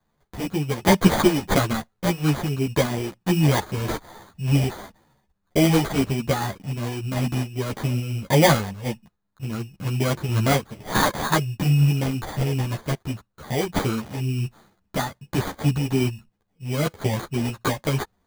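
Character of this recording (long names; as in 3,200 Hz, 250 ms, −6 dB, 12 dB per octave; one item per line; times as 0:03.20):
sample-and-hold tremolo
aliases and images of a low sample rate 2,700 Hz, jitter 0%
a shimmering, thickened sound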